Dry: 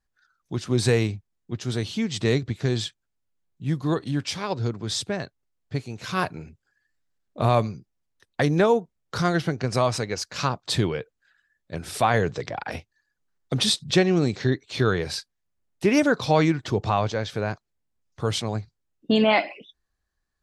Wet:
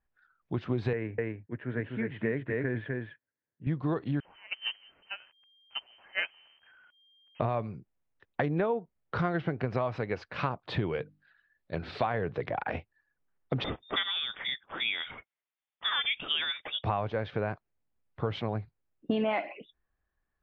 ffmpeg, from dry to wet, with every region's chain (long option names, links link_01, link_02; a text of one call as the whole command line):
ffmpeg -i in.wav -filter_complex "[0:a]asettb=1/sr,asplit=3[link_01][link_02][link_03];[link_01]atrim=end=0.934[link_04];[link_02]atrim=start=0.93:end=3.67,asetpts=PTS-STARTPTS,afade=type=in:duration=0.004:curve=qsin,afade=type=out:start_time=2.736:duration=0.004:curve=qsin,highpass=160,equalizer=frequency=190:width_type=q:width=4:gain=-10,equalizer=frequency=370:width_type=q:width=4:gain=-5,equalizer=frequency=760:width_type=q:width=4:gain=-10,equalizer=frequency=1200:width_type=q:width=4:gain=-9,equalizer=frequency=1700:width_type=q:width=4:gain=8,lowpass=frequency=2100:width=0.5412,lowpass=frequency=2100:width=1.3066,aecho=1:1:251:0.596,atrim=end_sample=120834[link_05];[link_03]atrim=start=3.666[link_06];[link_04][link_05]acrossfade=duration=0.004:curve1=hsin:curve2=qsin[link_07];[link_07][link_06]acrossfade=duration=0.004:curve1=qsin:curve2=hsin,asettb=1/sr,asplit=3[link_08][link_09][link_10];[link_08]atrim=end=4.204[link_11];[link_09]atrim=start=4.2:end=7.4,asetpts=PTS-STARTPTS,afade=type=in:duration=0.004:curve=qsin,afade=type=out:start_time=3.196:duration=0.004:curve=qsin,aeval=exprs='val(0)+0.5*0.0447*sgn(val(0))':channel_layout=same,agate=range=-24dB:threshold=-22dB:ratio=16:release=100:detection=peak,lowpass=frequency=2700:width_type=q:width=0.5098,lowpass=frequency=2700:width_type=q:width=0.6013,lowpass=frequency=2700:width_type=q:width=0.9,lowpass=frequency=2700:width_type=q:width=2.563,afreqshift=-3200[link_12];[link_10]atrim=start=7.396[link_13];[link_11][link_12]acrossfade=duration=0.004:curve1=hsin:curve2=qsin[link_14];[link_14][link_13]acrossfade=duration=0.004:curve1=qsin:curve2=hsin,asettb=1/sr,asplit=3[link_15][link_16][link_17];[link_15]atrim=end=10.934[link_18];[link_16]atrim=start=10.93:end=12.07,asetpts=PTS-STARTPTS,afade=type=in:duration=0.004:curve=qsin,afade=type=out:start_time=1.136:duration=0.004:curve=qsin,equalizer=frequency=4300:width_type=o:width=0.44:gain=13,bandreject=frequency=50:width_type=h:width=6,bandreject=frequency=100:width_type=h:width=6,bandreject=frequency=150:width_type=h:width=6,bandreject=frequency=200:width_type=h:width=6,bandreject=frequency=250:width_type=h:width=6,bandreject=frequency=300:width_type=h:width=6[link_19];[link_17]atrim=start=12.066[link_20];[link_18][link_19]acrossfade=duration=0.004:curve1=hsin:curve2=qsin[link_21];[link_21][link_20]acrossfade=duration=0.004:curve1=qsin:curve2=hsin,asettb=1/sr,asplit=3[link_22][link_23][link_24];[link_22]atrim=end=13.644[link_25];[link_23]atrim=start=13.64:end=16.84,asetpts=PTS-STARTPTS,afade=type=in:duration=0.004:curve=qsin,afade=type=out:start_time=3.196:duration=0.004:curve=qsin,highpass=230,lowpass=frequency=3200:width_type=q:width=0.5098,lowpass=frequency=3200:width_type=q:width=0.6013,lowpass=frequency=3200:width_type=q:width=0.9,lowpass=frequency=3200:width_type=q:width=2.563,afreqshift=-3800[link_26];[link_24]atrim=start=16.836[link_27];[link_25][link_26]acrossfade=duration=0.004:curve1=hsin:curve2=qsin[link_28];[link_28][link_27]acrossfade=duration=0.004:curve1=qsin:curve2=hsin,lowpass=frequency=2800:width=0.5412,lowpass=frequency=2800:width=1.3066,equalizer=frequency=650:width_type=o:width=1.7:gain=2.5,acompressor=threshold=-24dB:ratio=6,volume=-2dB" out.wav